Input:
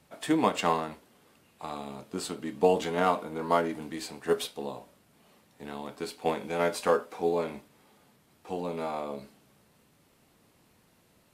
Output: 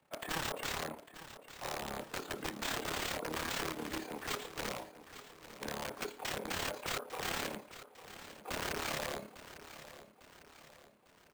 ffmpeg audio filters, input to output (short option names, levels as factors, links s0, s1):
-filter_complex "[0:a]agate=range=0.355:threshold=0.00251:ratio=16:detection=peak,asplit=2[s0][s1];[s1]highpass=f=720:p=1,volume=6.31,asoftclip=type=tanh:threshold=0.335[s2];[s0][s2]amix=inputs=2:normalize=0,lowpass=f=1200:p=1,volume=0.501,acrossover=split=210|950[s3][s4][s5];[s5]acompressor=threshold=0.00794:ratio=6[s6];[s3][s4][s6]amix=inputs=3:normalize=0,asoftclip=type=hard:threshold=0.106,acrossover=split=780|2900[s7][s8][s9];[s7]acompressor=threshold=0.0224:ratio=4[s10];[s8]acompressor=threshold=0.0178:ratio=4[s11];[s9]acompressor=threshold=0.002:ratio=4[s12];[s10][s11][s12]amix=inputs=3:normalize=0,acrusher=samples=4:mix=1:aa=0.000001,aeval=exprs='(mod(31.6*val(0)+1,2)-1)/31.6':c=same,tremolo=f=35:d=0.667,aecho=1:1:851|1702|2553|3404|4255:0.2|0.0958|0.046|0.0221|0.0106"